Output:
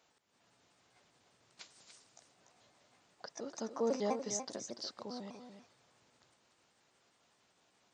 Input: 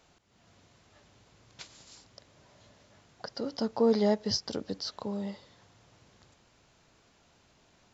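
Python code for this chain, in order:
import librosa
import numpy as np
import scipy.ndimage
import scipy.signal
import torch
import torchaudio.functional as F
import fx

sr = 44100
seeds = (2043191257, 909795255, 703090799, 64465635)

p1 = fx.pitch_trill(x, sr, semitones=3.5, every_ms=100)
p2 = fx.highpass(p1, sr, hz=340.0, slope=6)
p3 = p2 + fx.echo_single(p2, sr, ms=291, db=-9.0, dry=0)
y = F.gain(torch.from_numpy(p3), -6.5).numpy()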